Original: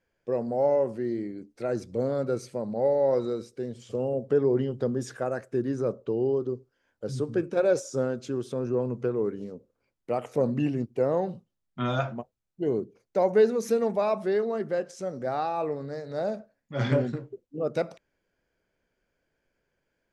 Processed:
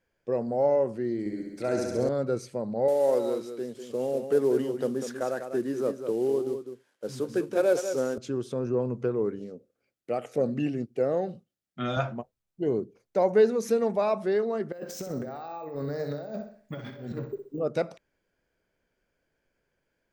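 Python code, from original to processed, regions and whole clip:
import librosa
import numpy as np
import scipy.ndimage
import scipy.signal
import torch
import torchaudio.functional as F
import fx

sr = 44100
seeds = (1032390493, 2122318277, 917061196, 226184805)

y = fx.chain(x, sr, fx.high_shelf(hz=3800.0, db=9.5),
    fx.room_flutter(wall_m=11.5, rt60_s=1.3), at=(1.19, 2.09))
y = fx.chain(y, sr, fx.cvsd(bps=64000),
    fx.highpass(hz=220.0, slope=12),
    fx.echo_single(ms=197, db=-8.5), at=(2.88, 8.18))
y = fx.chain(y, sr, fx.highpass(hz=180.0, slope=6),
    fx.peak_eq(hz=1000.0, db=-6.5, octaves=0.4),
    fx.notch(hz=950.0, q=6.2), at=(9.39, 11.97))
y = fx.chain(y, sr, fx.resample_bad(factor=2, down='none', up='hold'),
    fx.over_compress(threshold_db=-37.0, ratio=-1.0),
    fx.room_flutter(wall_m=10.8, rt60_s=0.47), at=(14.72, 17.59))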